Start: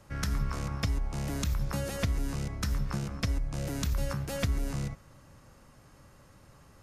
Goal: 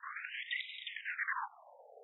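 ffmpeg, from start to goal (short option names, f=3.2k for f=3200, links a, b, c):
-af "afftfilt=real='hypot(re,im)*cos(2*PI*random(0))':imag='hypot(re,im)*sin(2*PI*random(1))':win_size=512:overlap=0.75,asetrate=147735,aresample=44100,afftfilt=real='re*between(b*sr/1024,580*pow(2800/580,0.5+0.5*sin(2*PI*0.36*pts/sr))/1.41,580*pow(2800/580,0.5+0.5*sin(2*PI*0.36*pts/sr))*1.41)':imag='im*between(b*sr/1024,580*pow(2800/580,0.5+0.5*sin(2*PI*0.36*pts/sr))/1.41,580*pow(2800/580,0.5+0.5*sin(2*PI*0.36*pts/sr))*1.41)':win_size=1024:overlap=0.75,volume=10.5dB"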